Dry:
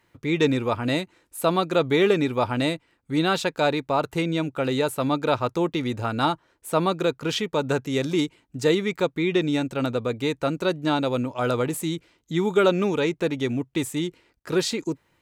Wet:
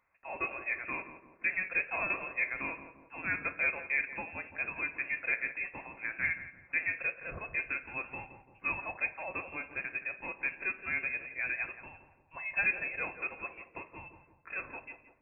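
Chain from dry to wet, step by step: inverse Chebyshev high-pass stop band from 240 Hz, stop band 40 dB; inverted band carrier 3000 Hz; on a send: darkening echo 0.17 s, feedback 52%, low-pass 1000 Hz, level -8.5 dB; on the sum: two-slope reverb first 0.44 s, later 1.6 s, from -26 dB, DRR 8 dB; gain -9 dB

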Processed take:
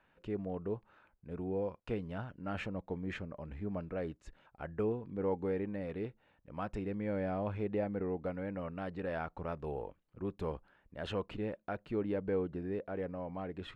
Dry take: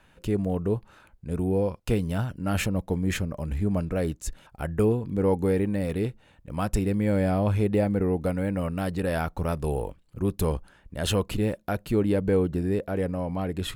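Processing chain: LPF 2400 Hz 12 dB/oct; low shelf 180 Hz -10.5 dB; gain -8.5 dB

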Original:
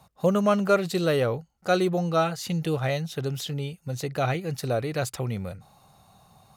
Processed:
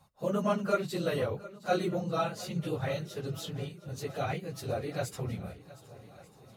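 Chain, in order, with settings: phase scrambler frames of 50 ms; swung echo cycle 1.191 s, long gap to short 1.5:1, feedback 48%, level -18.5 dB; gain -7.5 dB

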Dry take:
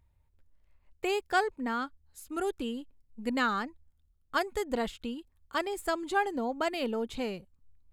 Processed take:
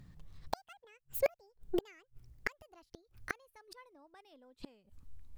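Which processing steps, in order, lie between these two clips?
speed glide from 200% -> 95%; flipped gate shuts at -30 dBFS, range -40 dB; gain +11.5 dB

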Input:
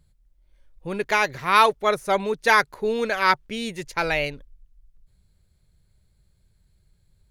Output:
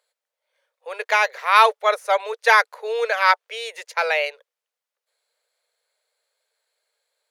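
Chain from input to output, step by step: Chebyshev high-pass 460 Hz, order 6; high shelf 6300 Hz -5 dB; gain +3.5 dB

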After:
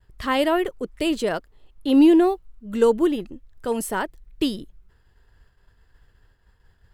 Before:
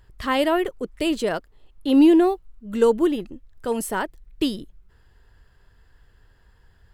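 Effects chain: expander -50 dBFS

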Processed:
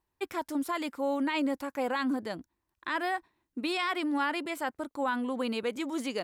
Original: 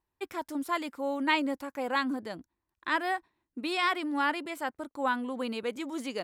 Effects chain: limiter -24 dBFS, peak gain reduction 11 dB; gain +2.5 dB

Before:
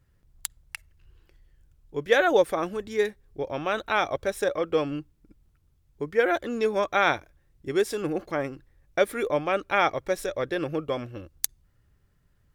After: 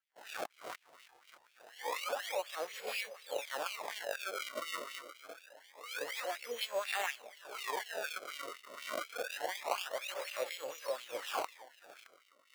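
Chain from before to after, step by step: spectral swells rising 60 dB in 0.52 s; gate with hold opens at -48 dBFS; band shelf 1000 Hz -9 dB; compressor 10:1, threshold -36 dBFS, peak gain reduction 21 dB; split-band echo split 640 Hz, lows 0.356 s, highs 0.618 s, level -14 dB; formant shift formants +3 st; decimation with a swept rate 30×, swing 160% 0.26 Hz; LFO high-pass sine 4.1 Hz 620–2800 Hz; gain +1.5 dB

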